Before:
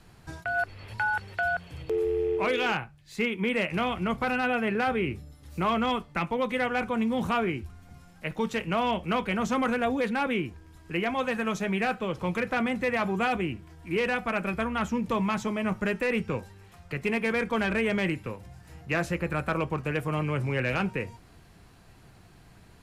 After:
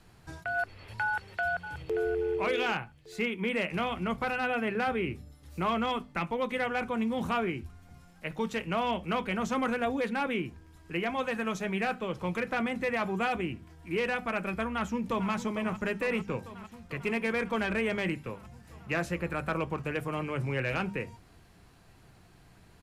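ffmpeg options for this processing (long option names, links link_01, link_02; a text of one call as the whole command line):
ffmpeg -i in.wav -filter_complex "[0:a]asplit=2[link_01][link_02];[link_02]afade=type=in:start_time=1.05:duration=0.01,afade=type=out:start_time=2.05:duration=0.01,aecho=0:1:580|1160|1740:0.298538|0.0895615|0.0268684[link_03];[link_01][link_03]amix=inputs=2:normalize=0,asplit=2[link_04][link_05];[link_05]afade=type=in:start_time=14.69:duration=0.01,afade=type=out:start_time=15.31:duration=0.01,aecho=0:1:450|900|1350|1800|2250|2700|3150|3600|4050|4500|4950|5400:0.237137|0.18971|0.151768|0.121414|0.0971315|0.0777052|0.0621641|0.0497313|0.039785|0.031828|0.0254624|0.0203699[link_06];[link_04][link_06]amix=inputs=2:normalize=0,bandreject=frequency=50:width_type=h:width=6,bandreject=frequency=100:width_type=h:width=6,bandreject=frequency=150:width_type=h:width=6,bandreject=frequency=200:width_type=h:width=6,bandreject=frequency=250:width_type=h:width=6,volume=-3dB" out.wav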